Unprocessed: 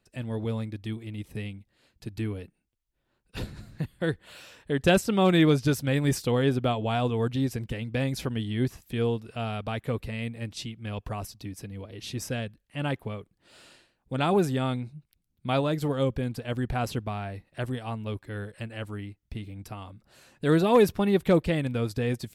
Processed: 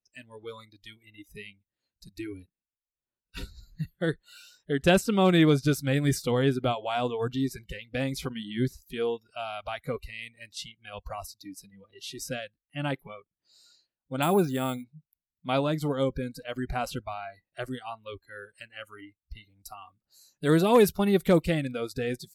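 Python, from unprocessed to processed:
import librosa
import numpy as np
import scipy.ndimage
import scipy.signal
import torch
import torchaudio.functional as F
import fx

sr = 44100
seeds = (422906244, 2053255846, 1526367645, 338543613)

y = fx.noise_reduce_blind(x, sr, reduce_db=23)
y = fx.resample_bad(y, sr, factor=4, down='filtered', up='hold', at=(14.22, 14.84))
y = fx.high_shelf(y, sr, hz=7500.0, db=9.0, at=(19.63, 21.54))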